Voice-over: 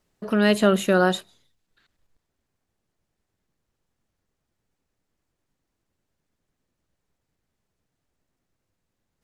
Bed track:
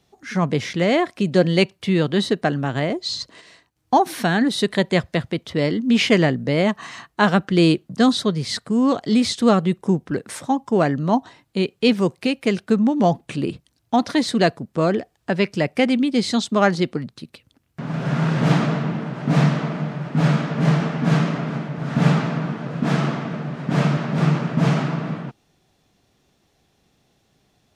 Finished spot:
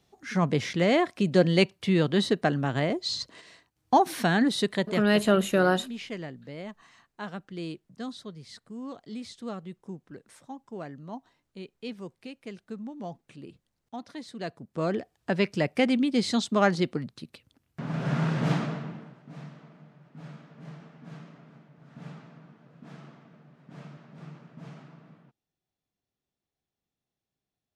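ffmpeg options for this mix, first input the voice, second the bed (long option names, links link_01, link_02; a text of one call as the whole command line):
ffmpeg -i stem1.wav -i stem2.wav -filter_complex "[0:a]adelay=4650,volume=-3.5dB[link_01];[1:a]volume=11dB,afade=type=out:start_time=4.47:duration=0.8:silence=0.149624,afade=type=in:start_time=14.38:duration=0.82:silence=0.16788,afade=type=out:start_time=18.12:duration=1.11:silence=0.0841395[link_02];[link_01][link_02]amix=inputs=2:normalize=0" out.wav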